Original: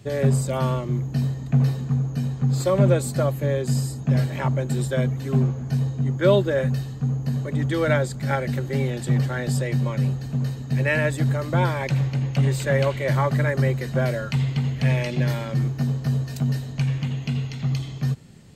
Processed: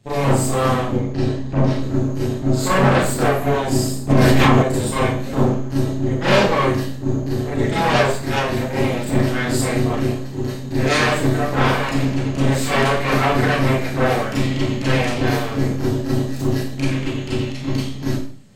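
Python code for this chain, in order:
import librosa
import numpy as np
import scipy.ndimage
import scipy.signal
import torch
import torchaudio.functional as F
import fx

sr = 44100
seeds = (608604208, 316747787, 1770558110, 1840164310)

y = fx.lowpass(x, sr, hz=5500.0, slope=12, at=(0.92, 1.79))
y = fx.low_shelf(y, sr, hz=130.0, db=-6.0, at=(9.9, 10.52))
y = fx.cheby_harmonics(y, sr, harmonics=(8,), levels_db=(-7,), full_scale_db=-6.0)
y = fx.vibrato(y, sr, rate_hz=4.9, depth_cents=13.0)
y = fx.rev_schroeder(y, sr, rt60_s=0.45, comb_ms=29, drr_db=-9.0)
y = fx.env_flatten(y, sr, amount_pct=100, at=(4.09, 4.61), fade=0.02)
y = y * librosa.db_to_amplitude(-10.0)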